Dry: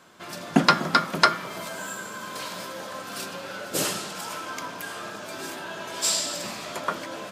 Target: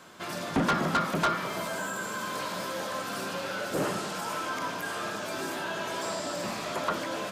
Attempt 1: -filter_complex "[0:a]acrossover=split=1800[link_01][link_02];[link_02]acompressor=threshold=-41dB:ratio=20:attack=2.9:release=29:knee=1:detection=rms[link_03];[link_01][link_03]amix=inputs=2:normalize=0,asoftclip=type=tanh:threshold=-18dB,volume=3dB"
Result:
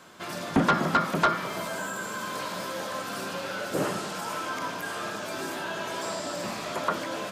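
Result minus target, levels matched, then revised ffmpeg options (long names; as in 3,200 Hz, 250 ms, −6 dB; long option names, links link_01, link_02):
soft clipping: distortion −4 dB
-filter_complex "[0:a]acrossover=split=1800[link_01][link_02];[link_02]acompressor=threshold=-41dB:ratio=20:attack=2.9:release=29:knee=1:detection=rms[link_03];[link_01][link_03]amix=inputs=2:normalize=0,asoftclip=type=tanh:threshold=-24dB,volume=3dB"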